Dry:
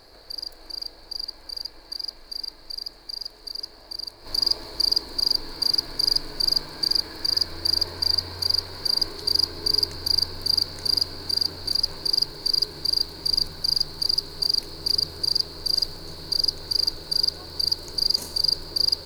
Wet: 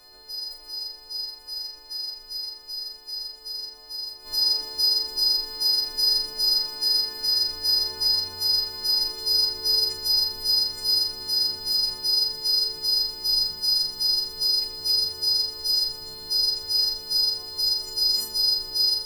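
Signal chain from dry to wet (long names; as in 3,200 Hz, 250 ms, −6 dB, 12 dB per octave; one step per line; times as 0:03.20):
every partial snapped to a pitch grid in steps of 3 semitones
flutter between parallel walls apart 7 metres, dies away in 0.64 s
level −7.5 dB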